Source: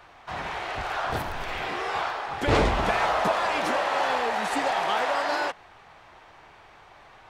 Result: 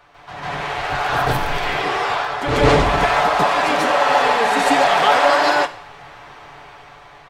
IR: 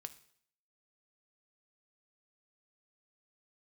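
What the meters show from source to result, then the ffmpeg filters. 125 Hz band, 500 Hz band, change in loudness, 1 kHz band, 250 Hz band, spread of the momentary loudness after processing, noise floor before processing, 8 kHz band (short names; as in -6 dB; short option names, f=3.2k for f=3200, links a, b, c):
+9.0 dB, +9.5 dB, +9.5 dB, +9.5 dB, +8.5 dB, 10 LU, -52 dBFS, +9.5 dB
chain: -filter_complex "[0:a]aecho=1:1:6.9:0.42,asplit=2[a][b];[1:a]atrim=start_sample=2205,adelay=145[c];[b][c]afir=irnorm=-1:irlink=0,volume=11dB[d];[a][d]amix=inputs=2:normalize=0,dynaudnorm=f=470:g=5:m=11.5dB,volume=-1dB"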